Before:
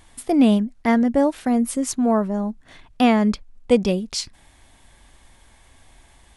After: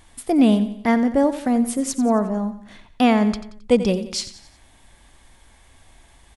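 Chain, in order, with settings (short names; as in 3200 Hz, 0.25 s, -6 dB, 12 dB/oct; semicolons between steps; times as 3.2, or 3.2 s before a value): feedback echo 89 ms, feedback 45%, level -13 dB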